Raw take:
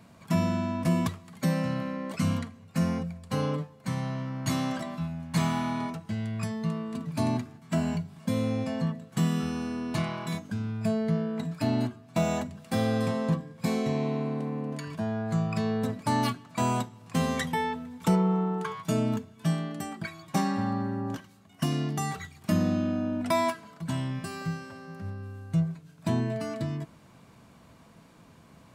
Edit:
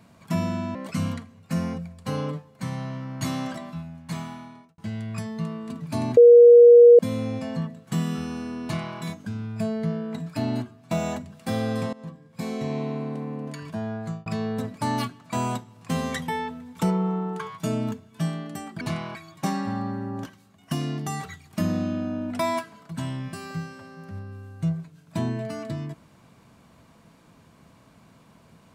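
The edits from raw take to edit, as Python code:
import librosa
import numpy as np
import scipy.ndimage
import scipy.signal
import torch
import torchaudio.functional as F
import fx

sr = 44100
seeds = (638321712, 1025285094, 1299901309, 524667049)

y = fx.edit(x, sr, fx.cut(start_s=0.75, length_s=1.25),
    fx.fade_out_span(start_s=4.72, length_s=1.31),
    fx.bleep(start_s=7.42, length_s=0.82, hz=477.0, db=-7.0),
    fx.duplicate(start_s=9.89, length_s=0.34, to_s=20.06),
    fx.fade_in_from(start_s=13.18, length_s=0.82, floor_db=-20.0),
    fx.fade_out_span(start_s=15.12, length_s=0.39, curve='qsin'), tone=tone)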